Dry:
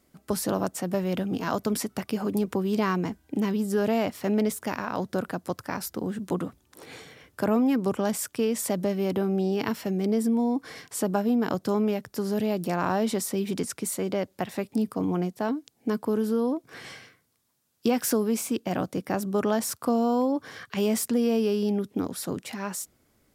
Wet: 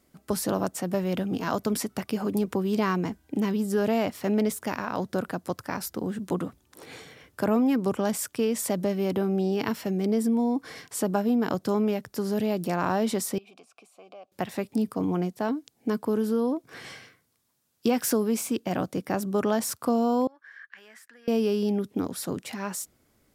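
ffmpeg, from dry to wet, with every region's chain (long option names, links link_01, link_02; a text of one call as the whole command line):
ffmpeg -i in.wav -filter_complex "[0:a]asettb=1/sr,asplit=3[link_01][link_02][link_03];[link_01]atrim=end=13.384[link_04];[link_02]atrim=start=13.38:end=14.32,asetpts=PTS-STARTPTS,afade=type=in:duration=0.004:curve=qsin,afade=type=out:start_time=0.936:duration=0.004:curve=qsin,highshelf=frequency=3100:gain=11.5,acompressor=threshold=-30dB:ratio=3:attack=3.2:release=140:knee=1:detection=peak,asplit=3[link_05][link_06][link_07];[link_05]bandpass=frequency=730:width_type=q:width=8,volume=0dB[link_08];[link_06]bandpass=frequency=1090:width_type=q:width=8,volume=-6dB[link_09];[link_07]bandpass=frequency=2440:width_type=q:width=8,volume=-9dB[link_10];[link_08][link_09][link_10]amix=inputs=3:normalize=0[link_11];[link_03]atrim=start=14.316[link_12];[link_04][link_11]acrossfade=duration=0.004:curve1=hsin:curve2=qsin[link_13];[link_13][link_12]acrossfade=duration=0.004:curve1=qsin:curve2=hsin,asettb=1/sr,asplit=3[link_14][link_15][link_16];[link_14]atrim=end=20.274[link_17];[link_15]atrim=start=20.27:end=21.28,asetpts=PTS-STARTPTS,afade=type=in:duration=0.004:curve=qsin,afade=type=out:start_time=1.006:duration=0.004:curve=qsin,bandpass=frequency=1700:width_type=q:width=8.7,aemphasis=mode=production:type=50kf[link_18];[link_16]atrim=start=21.276[link_19];[link_17][link_18]acrossfade=duration=0.004:curve1=hsin:curve2=qsin[link_20];[link_20][link_19]acrossfade=duration=0.004:curve1=qsin:curve2=hsin" out.wav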